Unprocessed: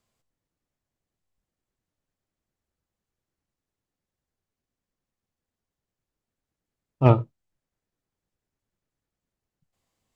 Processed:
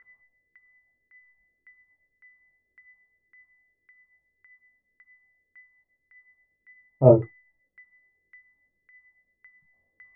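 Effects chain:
steady tone 2,000 Hz −50 dBFS
multi-voice chorus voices 6, 0.27 Hz, delay 23 ms, depth 2.6 ms
auto-filter low-pass saw down 1.8 Hz 390–1,600 Hz
level +2.5 dB

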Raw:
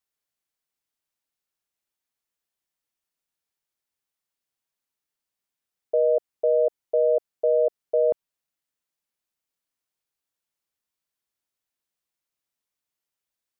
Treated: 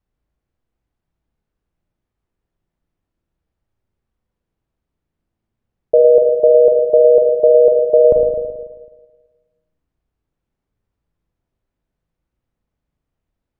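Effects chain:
spectral tilt −5.5 dB per octave
on a send: convolution reverb RT60 1.4 s, pre-delay 36 ms, DRR 1.5 dB
on the sum: level +6.5 dB

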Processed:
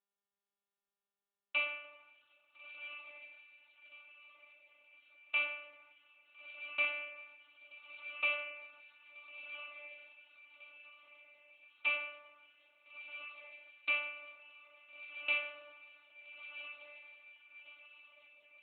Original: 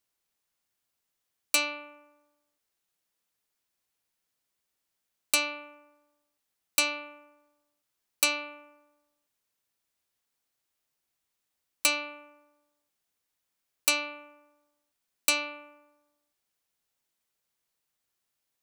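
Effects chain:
noise gate −59 dBFS, range −30 dB
parametric band 280 Hz −15 dB 1.5 octaves
feedback delay with all-pass diffusion 1,366 ms, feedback 45%, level −10 dB
convolution reverb, pre-delay 3 ms, DRR 1 dB
level −6.5 dB
AMR narrowband 7.4 kbit/s 8,000 Hz

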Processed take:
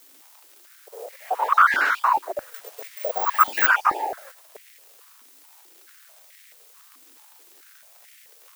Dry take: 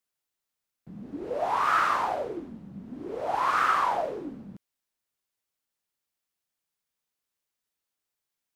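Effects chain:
time-frequency cells dropped at random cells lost 38%
background noise blue −51 dBFS
dead-zone distortion −54 dBFS
surface crackle 88 per second −44 dBFS
frequency shifter +250 Hz
0:02.54–0:03.67: bad sample-rate conversion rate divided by 2×, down none, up zero stuff
high-pass on a step sequencer 4.6 Hz 270–2,000 Hz
level +4 dB

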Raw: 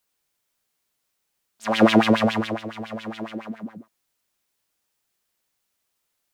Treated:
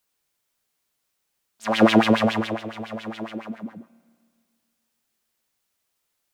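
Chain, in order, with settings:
spring reverb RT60 2 s, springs 30/53 ms, chirp 45 ms, DRR 19.5 dB

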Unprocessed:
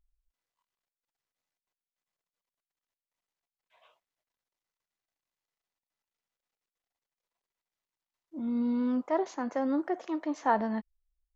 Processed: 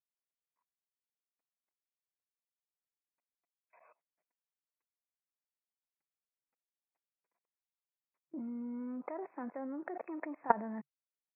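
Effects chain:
high-shelf EQ 2,000 Hz −3.5 dB
output level in coarse steps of 23 dB
brick-wall band-pass 150–2,600 Hz
level +5.5 dB

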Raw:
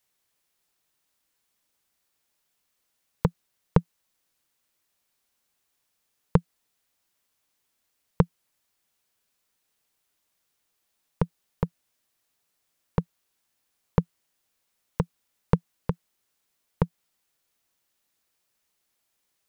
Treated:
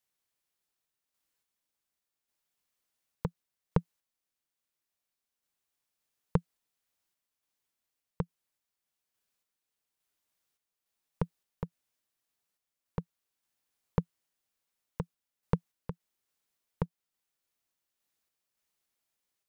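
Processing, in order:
sample-and-hold tremolo
level −6.5 dB

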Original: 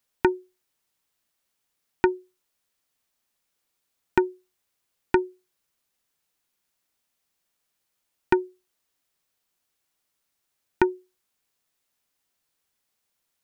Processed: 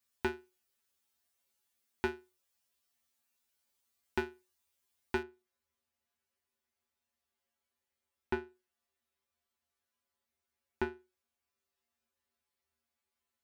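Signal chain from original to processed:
downward compressor, threshold −22 dBFS, peak gain reduction 8 dB
tuned comb filter 78 Hz, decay 0.24 s, harmonics odd, mix 100%
high-shelf EQ 3,200 Hz +3.5 dB, from 0:05.23 −8 dB
level +4.5 dB

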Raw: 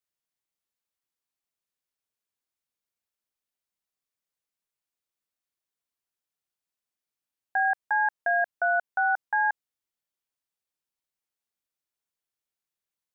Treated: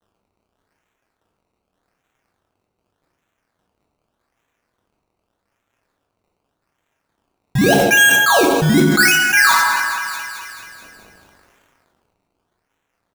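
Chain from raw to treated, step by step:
mu-law and A-law mismatch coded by mu
high-pass filter 1,200 Hz 24 dB per octave
parametric band 1,600 Hz +4.5 dB 0.77 octaves
comb filter 7.5 ms, depth 79%
in parallel at 0 dB: brickwall limiter −23 dBFS, peak gain reduction 9.5 dB
on the sum: sample-and-hold swept by an LFO 18×, swing 100% 0.84 Hz
delay with a high-pass on its return 216 ms, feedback 52%, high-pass 1,600 Hz, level −20 dB
dense smooth reverb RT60 1.2 s, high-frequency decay 0.65×, DRR 1.5 dB
level that may fall only so fast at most 22 dB per second
level +1.5 dB

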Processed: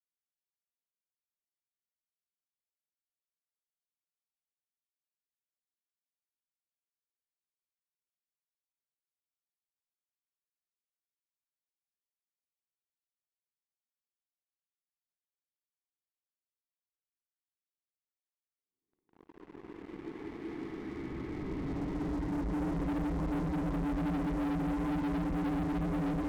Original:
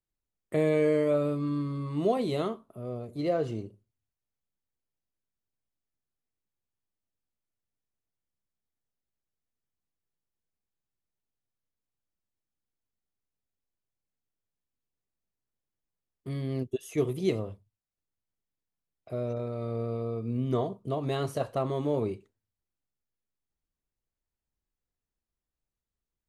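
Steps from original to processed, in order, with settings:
extreme stretch with random phases 39×, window 0.10 s, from 0:18.55
single-sideband voice off tune −320 Hz 310–2,700 Hz
leveller curve on the samples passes 5
level −8 dB

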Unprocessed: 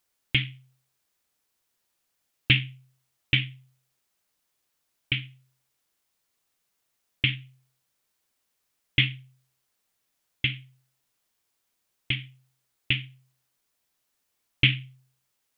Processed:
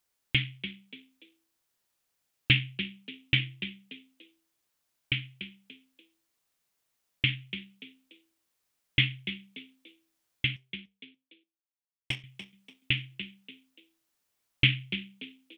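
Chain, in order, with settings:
0:10.56–0:12.24: power curve on the samples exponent 1.4
echo with shifted repeats 290 ms, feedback 32%, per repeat +66 Hz, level −11.5 dB
level −2.5 dB

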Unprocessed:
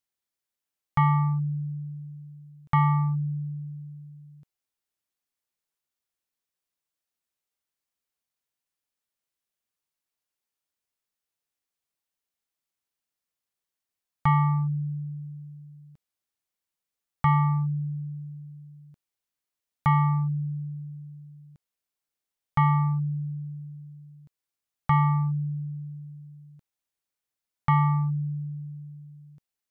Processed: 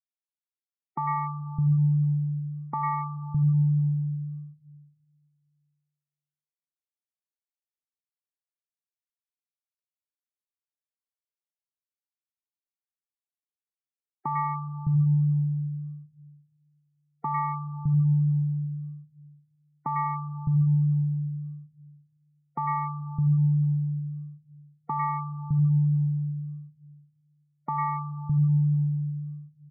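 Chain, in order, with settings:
noise gate −36 dBFS, range −28 dB
on a send at −4 dB: high-pass filter 48 Hz 6 dB per octave + convolution reverb RT60 1.6 s, pre-delay 58 ms
on the sum: gate on every frequency bin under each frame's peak −25 dB strong
three-band delay without the direct sound mids, highs, lows 100/610 ms, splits 220/1,200 Hz
in parallel at −2 dB: downward compressor, threshold −37 dBFS, peak gain reduction 17 dB
on the sum: high-shelf EQ 2,500 Hz −11.5 dB
level −2 dB

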